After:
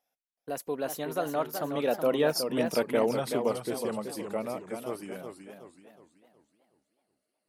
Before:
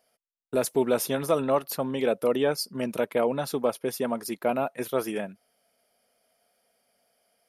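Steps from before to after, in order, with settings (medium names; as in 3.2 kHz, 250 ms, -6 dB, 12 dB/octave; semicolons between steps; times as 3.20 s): Doppler pass-by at 2.57 s, 36 m/s, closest 27 m; modulated delay 373 ms, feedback 41%, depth 150 cents, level -7 dB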